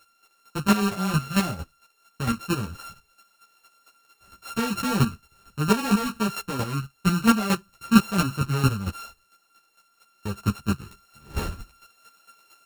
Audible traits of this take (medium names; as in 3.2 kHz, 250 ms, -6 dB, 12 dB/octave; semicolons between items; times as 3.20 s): a buzz of ramps at a fixed pitch in blocks of 32 samples; chopped level 4.4 Hz, depth 65%, duty 15%; a shimmering, thickened sound